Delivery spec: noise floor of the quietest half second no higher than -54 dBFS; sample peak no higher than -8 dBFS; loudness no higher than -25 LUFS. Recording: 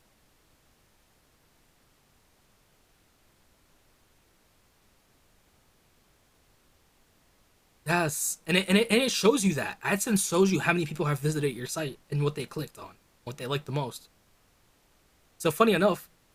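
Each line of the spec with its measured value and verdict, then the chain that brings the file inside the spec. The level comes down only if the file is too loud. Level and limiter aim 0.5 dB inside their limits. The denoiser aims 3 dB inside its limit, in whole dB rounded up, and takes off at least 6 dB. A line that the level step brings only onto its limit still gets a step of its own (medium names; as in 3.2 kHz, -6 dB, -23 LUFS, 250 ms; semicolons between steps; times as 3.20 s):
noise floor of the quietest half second -65 dBFS: pass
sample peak -7.5 dBFS: fail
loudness -27.0 LUFS: pass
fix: peak limiter -8.5 dBFS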